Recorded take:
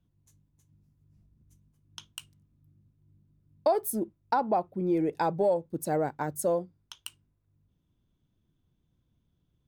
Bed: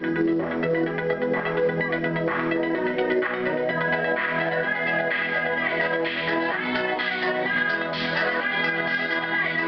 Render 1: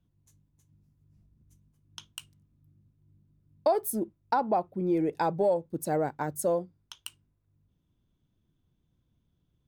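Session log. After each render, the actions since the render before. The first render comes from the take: nothing audible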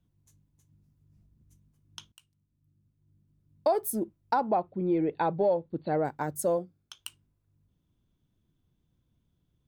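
2.12–3.82 fade in, from -17.5 dB; 4.48–6.05 brick-wall FIR low-pass 4600 Hz; 6.57–7 notch comb 950 Hz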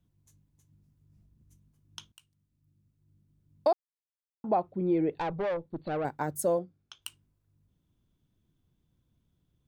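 3.73–4.44 mute; 5.18–6.05 tube stage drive 27 dB, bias 0.4; 6.59–7.02 air absorption 84 m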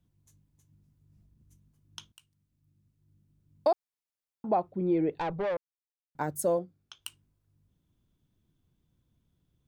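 5.57–6.15 mute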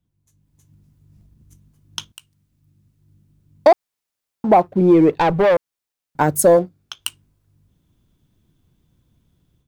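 sample leveller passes 1; AGC gain up to 13 dB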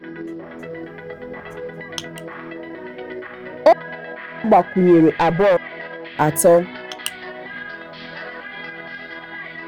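add bed -9 dB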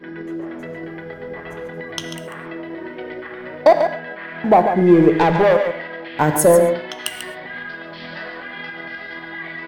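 echo 0.142 s -8.5 dB; non-linear reverb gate 0.15 s flat, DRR 9 dB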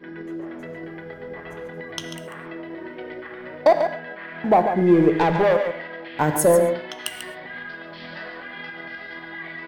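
gain -4 dB

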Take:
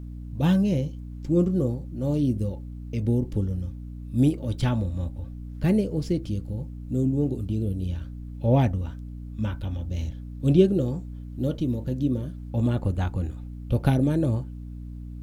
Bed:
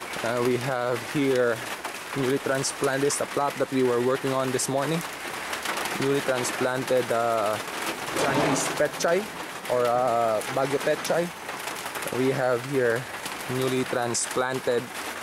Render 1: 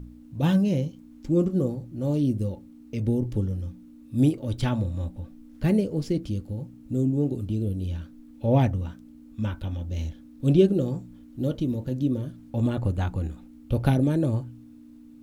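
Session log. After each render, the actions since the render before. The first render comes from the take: de-hum 60 Hz, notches 3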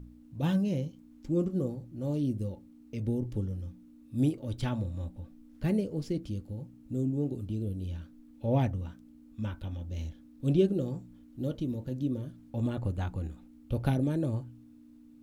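gain -6.5 dB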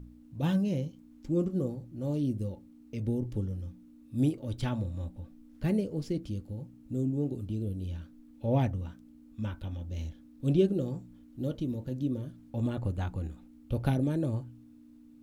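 nothing audible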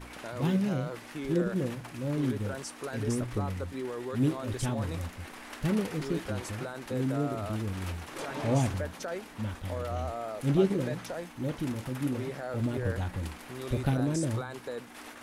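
add bed -13.5 dB

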